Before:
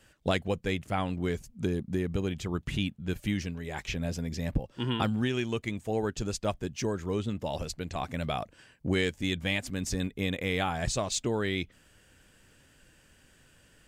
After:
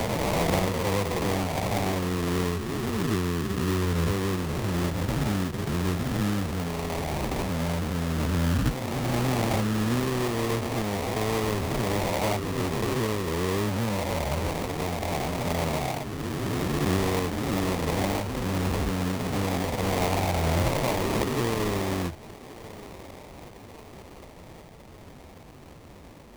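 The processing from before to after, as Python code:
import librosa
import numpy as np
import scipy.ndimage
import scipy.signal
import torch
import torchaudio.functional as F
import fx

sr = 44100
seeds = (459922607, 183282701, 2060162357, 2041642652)

p1 = fx.spec_swells(x, sr, rise_s=1.96)
p2 = fx.stretch_vocoder(p1, sr, factor=1.9)
p3 = scipy.signal.sosfilt(scipy.signal.butter(2, 63.0, 'highpass', fs=sr, output='sos'), p2)
p4 = fx.low_shelf(p3, sr, hz=100.0, db=7.0)
p5 = p4 + fx.echo_thinned(p4, sr, ms=1126, feedback_pct=53, hz=480.0, wet_db=-21.0, dry=0)
p6 = fx.sample_hold(p5, sr, seeds[0], rate_hz=1500.0, jitter_pct=20)
y = fx.band_squash(p6, sr, depth_pct=40)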